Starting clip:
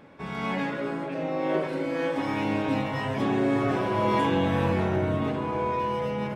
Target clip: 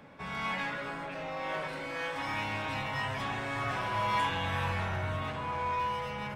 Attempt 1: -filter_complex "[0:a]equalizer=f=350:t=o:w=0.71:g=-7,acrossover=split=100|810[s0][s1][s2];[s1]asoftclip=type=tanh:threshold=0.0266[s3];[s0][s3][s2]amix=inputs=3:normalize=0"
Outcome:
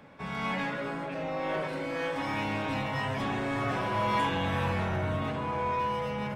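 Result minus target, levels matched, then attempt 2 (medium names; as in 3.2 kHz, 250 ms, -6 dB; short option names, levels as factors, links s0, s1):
saturation: distortion -6 dB
-filter_complex "[0:a]equalizer=f=350:t=o:w=0.71:g=-7,acrossover=split=100|810[s0][s1][s2];[s1]asoftclip=type=tanh:threshold=0.00668[s3];[s0][s3][s2]amix=inputs=3:normalize=0"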